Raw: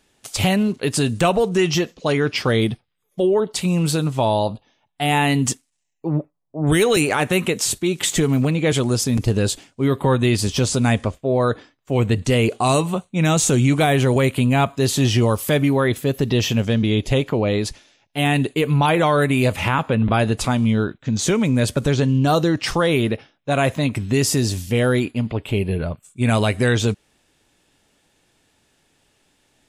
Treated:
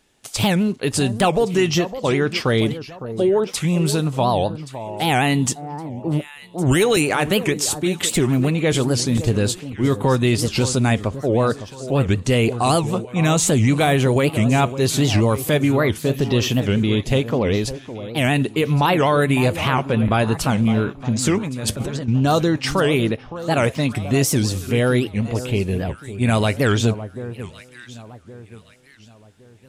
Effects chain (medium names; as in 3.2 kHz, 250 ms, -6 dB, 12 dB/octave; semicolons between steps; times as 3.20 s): 21.38–22.09 s: compressor with a negative ratio -26 dBFS, ratio -1; on a send: echo whose repeats swap between lows and highs 558 ms, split 1.2 kHz, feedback 58%, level -12 dB; on the sum: warped record 78 rpm, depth 250 cents